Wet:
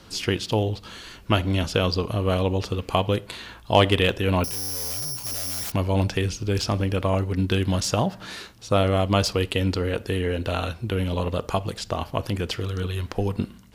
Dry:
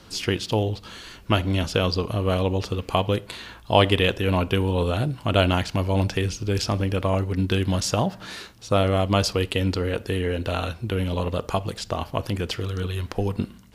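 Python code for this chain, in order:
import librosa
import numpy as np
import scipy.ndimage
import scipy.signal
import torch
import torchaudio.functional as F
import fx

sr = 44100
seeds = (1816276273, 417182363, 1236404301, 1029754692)

y = fx.resample_bad(x, sr, factor=8, down='none', up='zero_stuff', at=(4.44, 5.72))
y = fx.slew_limit(y, sr, full_power_hz=690.0)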